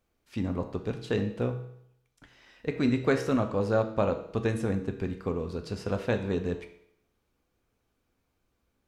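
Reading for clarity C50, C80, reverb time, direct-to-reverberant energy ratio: 10.0 dB, 12.5 dB, 0.70 s, 5.5 dB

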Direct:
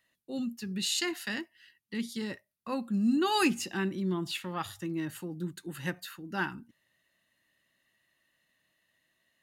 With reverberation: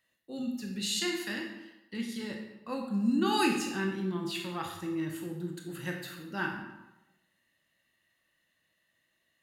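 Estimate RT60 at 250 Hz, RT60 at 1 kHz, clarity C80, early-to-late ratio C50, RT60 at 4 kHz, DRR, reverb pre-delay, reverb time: 0.90 s, 1.0 s, 7.0 dB, 4.5 dB, 0.75 s, 1.0 dB, 18 ms, 1.0 s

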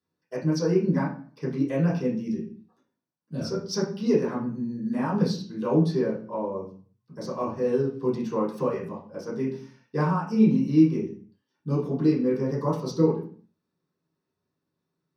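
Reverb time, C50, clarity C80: 0.45 s, 7.0 dB, 11.5 dB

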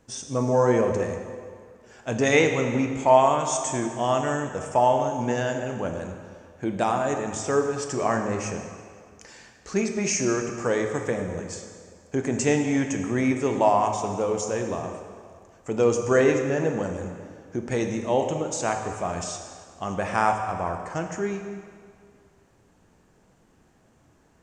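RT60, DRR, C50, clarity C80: 2.1 s, 4.0 dB, 6.0 dB, 6.5 dB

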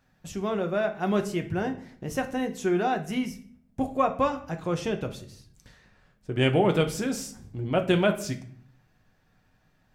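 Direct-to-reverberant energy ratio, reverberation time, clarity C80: 4.5 dB, 0.55 s, 17.0 dB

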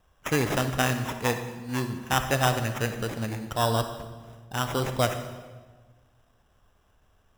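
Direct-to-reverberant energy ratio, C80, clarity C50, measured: 7.5 dB, 10.0 dB, 8.5 dB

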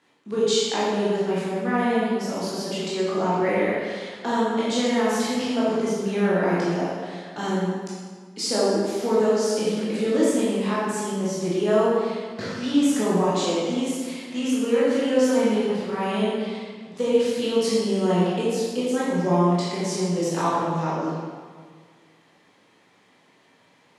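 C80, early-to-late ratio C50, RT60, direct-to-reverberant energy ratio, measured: −0.5 dB, −3.0 dB, 1.7 s, −9.0 dB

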